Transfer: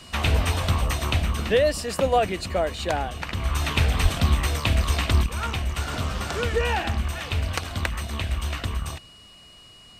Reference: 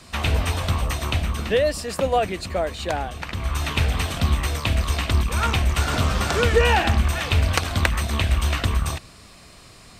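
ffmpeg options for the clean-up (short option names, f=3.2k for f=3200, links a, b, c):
-filter_complex "[0:a]bandreject=f=2.9k:w=30,asplit=3[a][b][c];[a]afade=t=out:st=4.02:d=0.02[d];[b]highpass=f=140:w=0.5412,highpass=f=140:w=1.3066,afade=t=in:st=4.02:d=0.02,afade=t=out:st=4.14:d=0.02[e];[c]afade=t=in:st=4.14:d=0.02[f];[d][e][f]amix=inputs=3:normalize=0,asetnsamples=n=441:p=0,asendcmd='5.26 volume volume 6.5dB',volume=0dB"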